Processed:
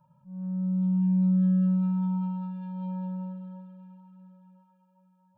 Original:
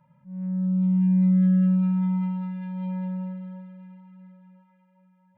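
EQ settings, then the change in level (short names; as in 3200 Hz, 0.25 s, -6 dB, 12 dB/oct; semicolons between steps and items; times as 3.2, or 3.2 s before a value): fixed phaser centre 850 Hz, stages 4; 0.0 dB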